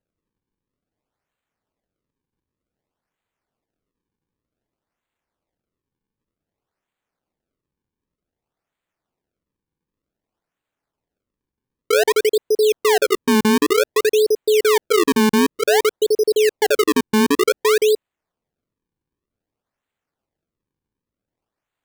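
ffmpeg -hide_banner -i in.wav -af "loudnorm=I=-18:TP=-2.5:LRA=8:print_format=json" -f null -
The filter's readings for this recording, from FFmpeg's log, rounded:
"input_i" : "-17.2",
"input_tp" : "-8.8",
"input_lra" : "4.9",
"input_thresh" : "-27.2",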